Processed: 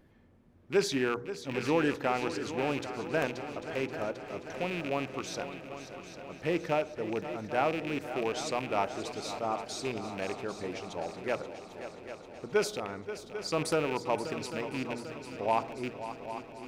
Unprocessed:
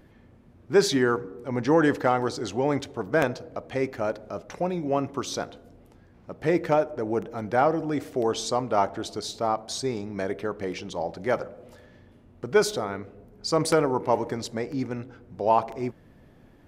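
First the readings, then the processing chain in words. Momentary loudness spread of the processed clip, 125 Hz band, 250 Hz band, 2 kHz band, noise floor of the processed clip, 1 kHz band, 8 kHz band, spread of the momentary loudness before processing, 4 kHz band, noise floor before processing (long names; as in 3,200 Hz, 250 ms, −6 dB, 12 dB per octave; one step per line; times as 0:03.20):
11 LU, −7.5 dB, −7.0 dB, −3.5 dB, −50 dBFS, −7.0 dB, −6.5 dB, 11 LU, −5.0 dB, −54 dBFS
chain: loose part that buzzes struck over −33 dBFS, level −20 dBFS
mains-hum notches 60/120 Hz
echo machine with several playback heads 265 ms, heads second and third, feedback 63%, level −12 dB
level −7.5 dB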